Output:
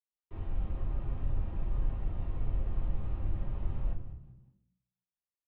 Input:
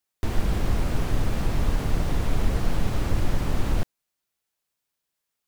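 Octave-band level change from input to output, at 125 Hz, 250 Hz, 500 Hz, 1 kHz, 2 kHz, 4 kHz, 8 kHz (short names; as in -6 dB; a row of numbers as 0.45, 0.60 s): -9.5 dB, -15.5 dB, -16.5 dB, -17.0 dB, -22.5 dB, under -25 dB, under -40 dB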